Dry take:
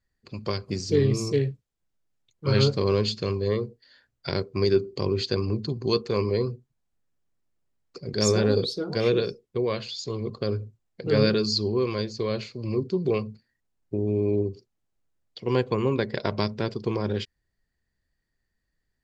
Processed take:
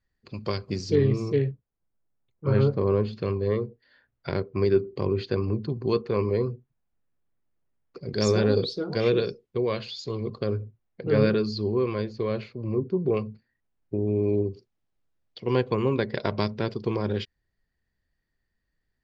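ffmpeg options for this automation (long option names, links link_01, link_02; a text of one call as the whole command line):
ffmpeg -i in.wav -af "asetnsamples=nb_out_samples=441:pad=0,asendcmd='0.95 lowpass f 2700;1.51 lowpass f 1400;3.13 lowpass f 2400;8.01 lowpass f 4600;10.44 lowpass f 2500;12.53 lowpass f 1500;13.17 lowpass f 3000;14.24 lowpass f 4700',lowpass=5100" out.wav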